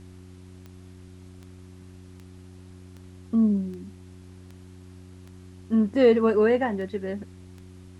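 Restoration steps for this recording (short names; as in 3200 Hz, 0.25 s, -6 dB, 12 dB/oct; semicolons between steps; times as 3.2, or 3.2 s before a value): de-click; de-hum 91.7 Hz, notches 4; expander -38 dBFS, range -21 dB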